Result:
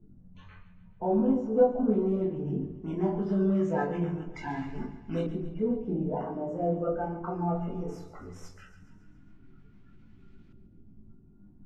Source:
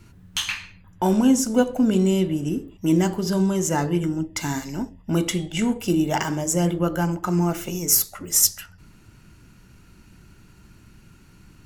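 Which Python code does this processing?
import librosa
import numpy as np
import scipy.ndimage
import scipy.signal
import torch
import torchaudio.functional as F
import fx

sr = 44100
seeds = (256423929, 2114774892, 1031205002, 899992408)

y = fx.spec_quant(x, sr, step_db=30)
y = fx.room_shoebox(y, sr, seeds[0], volume_m3=170.0, walls='furnished', distance_m=1.5)
y = fx.chorus_voices(y, sr, voices=2, hz=0.19, base_ms=21, depth_ms=3.2, mix_pct=40)
y = fx.filter_lfo_lowpass(y, sr, shape='saw_up', hz=0.19, low_hz=500.0, high_hz=2700.0, q=1.1)
y = fx.echo_feedback(y, sr, ms=138, feedback_pct=57, wet_db=-13.5)
y = y * librosa.db_to_amplitude(-8.0)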